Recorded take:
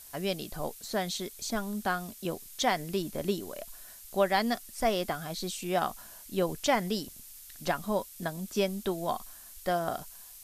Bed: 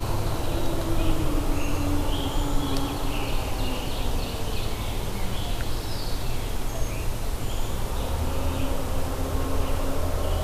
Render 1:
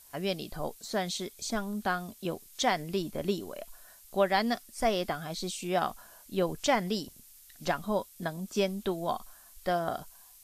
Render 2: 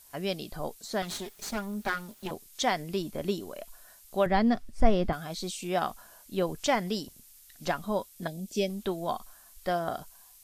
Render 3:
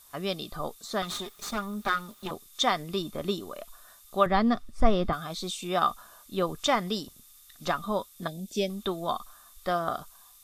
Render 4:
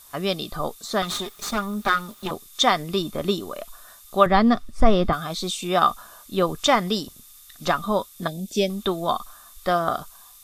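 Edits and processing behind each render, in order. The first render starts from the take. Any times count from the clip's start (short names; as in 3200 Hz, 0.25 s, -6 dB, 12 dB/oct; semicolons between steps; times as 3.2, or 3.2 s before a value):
noise print and reduce 6 dB
1.02–2.31 minimum comb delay 4.9 ms; 4.26–5.13 RIAA curve playback; 8.27–8.7 Butterworth band-stop 1200 Hz, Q 0.78
small resonant body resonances 1200/3600 Hz, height 16 dB, ringing for 35 ms
gain +6.5 dB; limiter -2 dBFS, peak gain reduction 2 dB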